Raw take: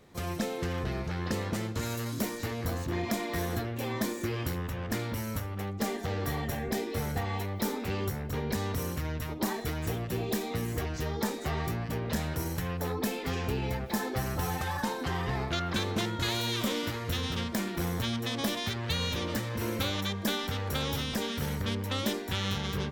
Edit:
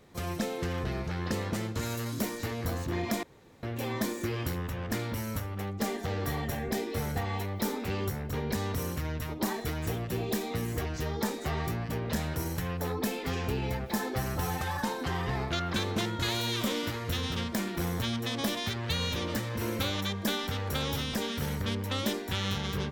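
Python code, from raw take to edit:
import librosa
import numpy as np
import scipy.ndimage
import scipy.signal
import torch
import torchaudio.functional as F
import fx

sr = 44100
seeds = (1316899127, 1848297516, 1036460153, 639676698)

y = fx.edit(x, sr, fx.room_tone_fill(start_s=3.23, length_s=0.4), tone=tone)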